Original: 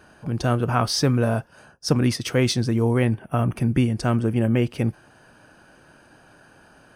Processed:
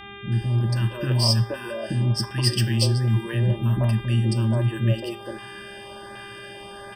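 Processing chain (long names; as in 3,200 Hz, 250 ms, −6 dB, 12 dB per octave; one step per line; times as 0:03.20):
EQ curve with evenly spaced ripples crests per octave 1.3, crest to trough 17 dB
reversed playback
downward compressor, threshold −25 dBFS, peak gain reduction 13.5 dB
reversed playback
three-band delay without the direct sound lows, highs, mids 320/470 ms, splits 330/1,100 Hz
hum with harmonics 400 Hz, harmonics 9, −46 dBFS −3 dB per octave
on a send at −12.5 dB: convolution reverb, pre-delay 3 ms
on the sum: auto-filter notch saw up 1.3 Hz 430–3,200 Hz
level +6 dB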